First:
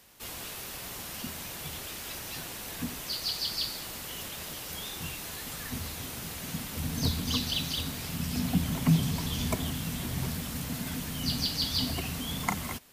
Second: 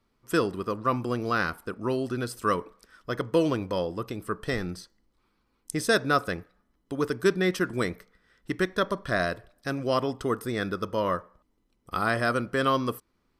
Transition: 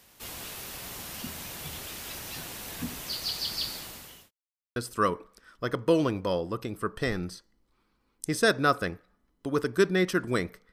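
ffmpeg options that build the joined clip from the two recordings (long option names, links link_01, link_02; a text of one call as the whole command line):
ffmpeg -i cue0.wav -i cue1.wav -filter_complex "[0:a]apad=whole_dur=10.72,atrim=end=10.72,asplit=2[link_01][link_02];[link_01]atrim=end=4.31,asetpts=PTS-STARTPTS,afade=type=out:start_time=3.74:duration=0.57[link_03];[link_02]atrim=start=4.31:end=4.76,asetpts=PTS-STARTPTS,volume=0[link_04];[1:a]atrim=start=2.22:end=8.18,asetpts=PTS-STARTPTS,afade=type=in:duration=0.004:curve=hsin[link_05];[link_03][link_04][link_05]concat=n=3:v=0:a=1" out.wav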